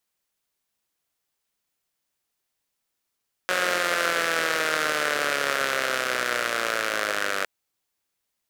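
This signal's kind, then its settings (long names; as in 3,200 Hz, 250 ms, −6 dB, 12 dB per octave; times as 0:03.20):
pulse-train model of a four-cylinder engine, changing speed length 3.96 s, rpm 5,500, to 2,900, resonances 560/1,400 Hz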